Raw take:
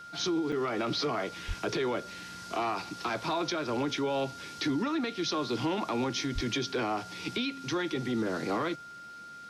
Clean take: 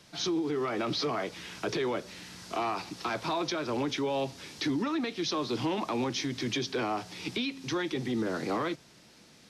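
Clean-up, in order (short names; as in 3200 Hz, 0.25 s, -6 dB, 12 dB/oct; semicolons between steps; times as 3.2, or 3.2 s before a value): notch 1400 Hz, Q 30; 1.47–1.59 HPF 140 Hz 24 dB/oct; 6.34–6.46 HPF 140 Hz 24 dB/oct; interpolate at 0.52, 5 ms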